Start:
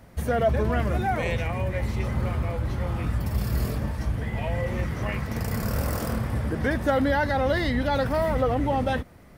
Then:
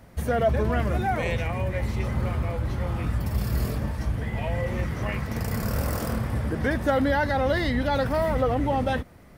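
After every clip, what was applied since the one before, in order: nothing audible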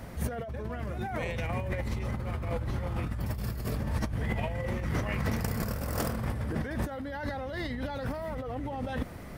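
negative-ratio compressor -33 dBFS, ratio -1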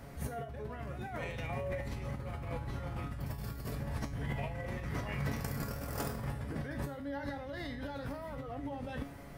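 resonator 140 Hz, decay 0.43 s, harmonics all, mix 80%; gain +4 dB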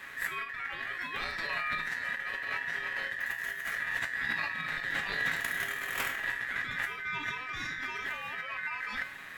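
ring modulator 1800 Hz; gain +6.5 dB

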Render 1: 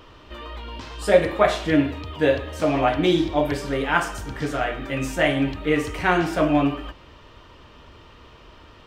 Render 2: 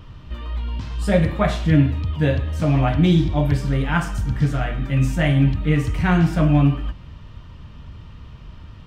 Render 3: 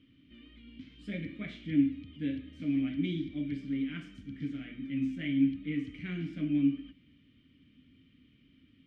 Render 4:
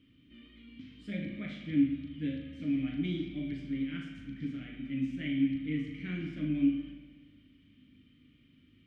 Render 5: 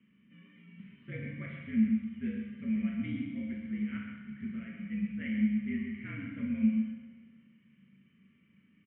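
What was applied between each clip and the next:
resonant low shelf 250 Hz +13.5 dB, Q 1.5; gain -2.5 dB
vowel filter i; gain -3.5 dB
on a send: flutter echo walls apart 6.7 m, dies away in 0.33 s; on the sum: spring tank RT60 1.7 s, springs 59 ms, chirp 75 ms, DRR 6.5 dB; gain -1.5 dB
echo 0.132 s -7.5 dB; mistuned SSB -61 Hz 220–2600 Hz

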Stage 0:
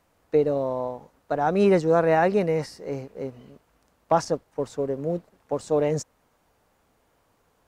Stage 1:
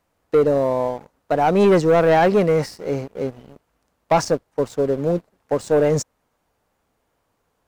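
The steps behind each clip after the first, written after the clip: sample leveller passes 2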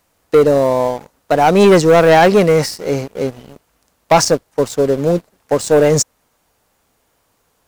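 high shelf 2900 Hz +9.5 dB; gain +5.5 dB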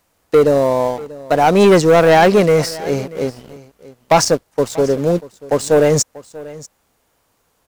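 echo 0.638 s -19.5 dB; gain -1 dB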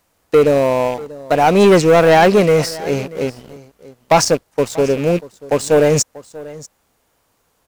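rattling part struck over -25 dBFS, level -22 dBFS

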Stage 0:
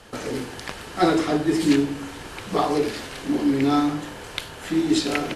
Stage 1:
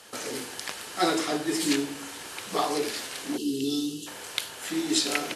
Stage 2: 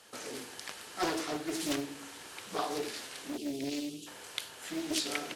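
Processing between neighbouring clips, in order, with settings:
HPF 380 Hz 6 dB/oct; spectral gain 3.37–4.07, 490–2600 Hz -26 dB; high shelf 4200 Hz +11.5 dB; gain -4 dB
Doppler distortion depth 0.55 ms; gain -7.5 dB

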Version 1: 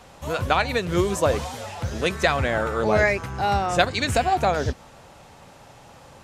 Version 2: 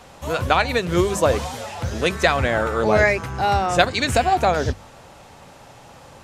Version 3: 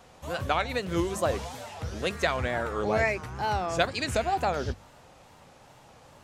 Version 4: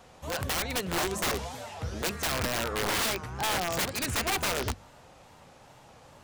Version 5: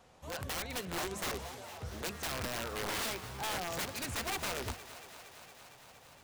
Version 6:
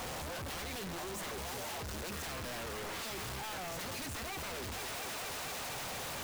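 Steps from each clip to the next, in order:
notches 50/100/150/200 Hz; gain +3 dB
wow and flutter 120 cents; gain -9 dB
wrapped overs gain 23 dB
thinning echo 0.231 s, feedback 81%, high-pass 230 Hz, level -15 dB; gain -8 dB
infinite clipping; gain -1 dB

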